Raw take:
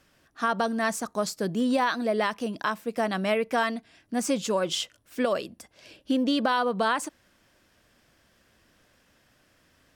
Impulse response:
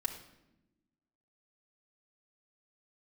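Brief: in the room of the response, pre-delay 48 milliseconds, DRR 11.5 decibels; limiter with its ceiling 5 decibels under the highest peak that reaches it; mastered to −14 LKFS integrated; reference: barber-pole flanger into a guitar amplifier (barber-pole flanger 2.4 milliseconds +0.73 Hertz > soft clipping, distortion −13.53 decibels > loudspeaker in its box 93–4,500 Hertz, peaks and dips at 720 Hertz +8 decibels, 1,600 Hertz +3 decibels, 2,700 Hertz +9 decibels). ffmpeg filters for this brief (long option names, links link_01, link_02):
-filter_complex "[0:a]alimiter=limit=-18dB:level=0:latency=1,asplit=2[link_01][link_02];[1:a]atrim=start_sample=2205,adelay=48[link_03];[link_02][link_03]afir=irnorm=-1:irlink=0,volume=-14dB[link_04];[link_01][link_04]amix=inputs=2:normalize=0,asplit=2[link_05][link_06];[link_06]adelay=2.4,afreqshift=0.73[link_07];[link_05][link_07]amix=inputs=2:normalize=1,asoftclip=threshold=-26dB,highpass=93,equalizer=frequency=720:width_type=q:width=4:gain=8,equalizer=frequency=1600:width_type=q:width=4:gain=3,equalizer=frequency=2700:width_type=q:width=4:gain=9,lowpass=frequency=4500:width=0.5412,lowpass=frequency=4500:width=1.3066,volume=18dB"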